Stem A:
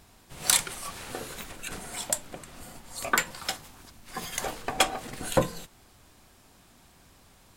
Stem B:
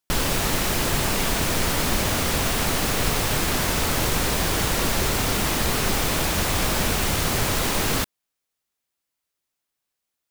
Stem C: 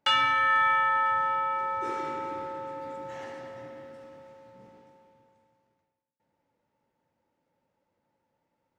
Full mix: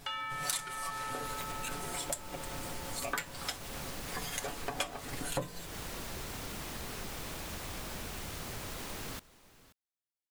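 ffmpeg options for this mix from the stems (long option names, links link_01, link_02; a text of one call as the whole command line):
ffmpeg -i stem1.wav -i stem2.wav -i stem3.wav -filter_complex "[0:a]aecho=1:1:7.1:0.82,volume=1dB[link_01];[1:a]adelay=1150,volume=-17.5dB,asplit=2[link_02][link_03];[link_03]volume=-20.5dB[link_04];[2:a]volume=-9dB[link_05];[link_04]aecho=0:1:531:1[link_06];[link_01][link_02][link_05][link_06]amix=inputs=4:normalize=0,acompressor=threshold=-37dB:ratio=3" out.wav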